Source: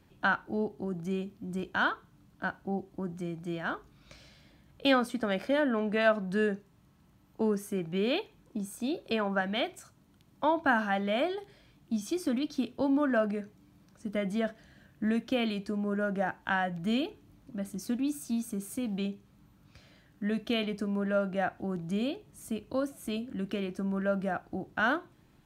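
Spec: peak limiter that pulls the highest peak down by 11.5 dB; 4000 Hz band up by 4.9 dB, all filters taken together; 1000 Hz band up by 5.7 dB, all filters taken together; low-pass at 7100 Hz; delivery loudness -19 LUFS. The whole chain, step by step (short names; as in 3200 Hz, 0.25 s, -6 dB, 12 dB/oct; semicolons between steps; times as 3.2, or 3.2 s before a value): LPF 7100 Hz; bell 1000 Hz +7.5 dB; bell 4000 Hz +6.5 dB; gain +13 dB; limiter -7 dBFS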